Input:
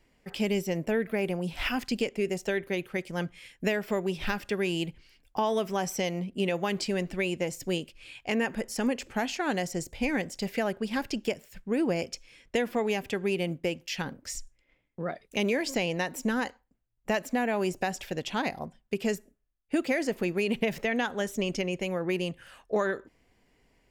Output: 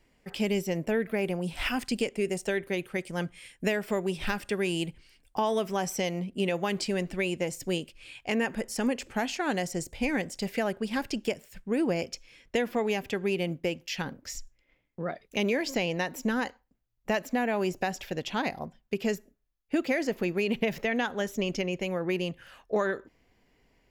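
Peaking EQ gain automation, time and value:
peaking EQ 8.8 kHz 0.26 oct
+1.5 dB
from 1.46 s +10 dB
from 5.51 s +3 dB
from 11.90 s -6 dB
from 14.21 s -12.5 dB

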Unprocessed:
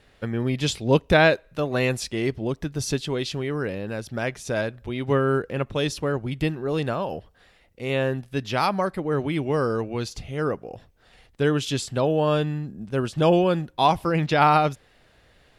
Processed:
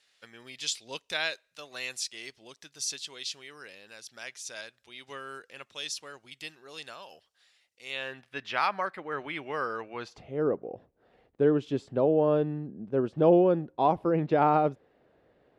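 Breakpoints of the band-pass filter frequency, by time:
band-pass filter, Q 1
7.84 s 6.1 kHz
8.28 s 1.8 kHz
9.89 s 1.8 kHz
10.39 s 400 Hz

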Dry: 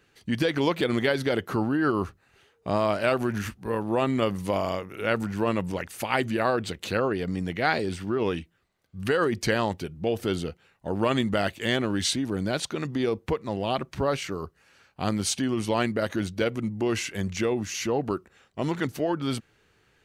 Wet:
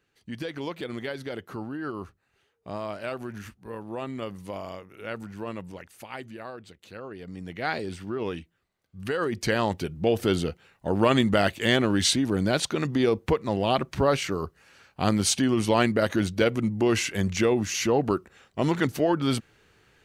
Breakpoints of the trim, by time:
5.56 s -9.5 dB
6.84 s -17.5 dB
7.69 s -4.5 dB
9.13 s -4.5 dB
9.89 s +3.5 dB

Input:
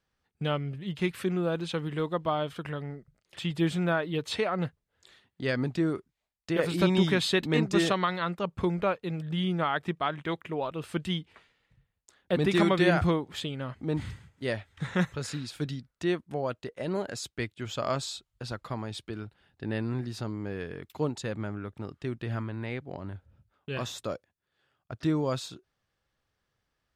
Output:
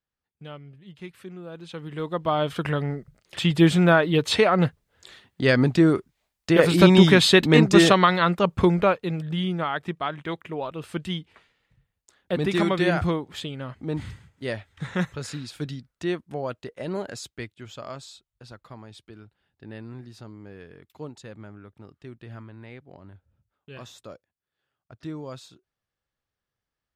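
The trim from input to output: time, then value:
1.46 s -11 dB
2.08 s +1 dB
2.62 s +10 dB
8.57 s +10 dB
9.63 s +1 dB
17.09 s +1 dB
17.93 s -8 dB

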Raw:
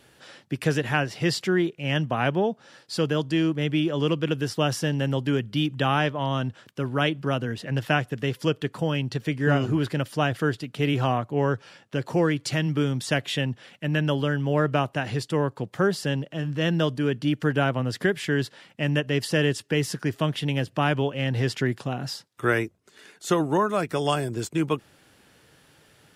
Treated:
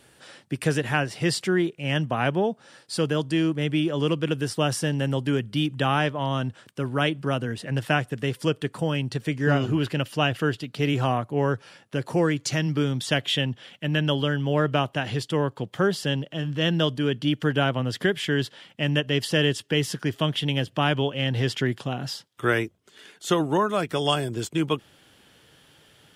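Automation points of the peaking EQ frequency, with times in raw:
peaking EQ +8.5 dB 0.28 oct
9.26 s 8.8 kHz
9.72 s 2.8 kHz
10.56 s 2.8 kHz
11.08 s 10 kHz
12.08 s 10 kHz
13.07 s 3.2 kHz

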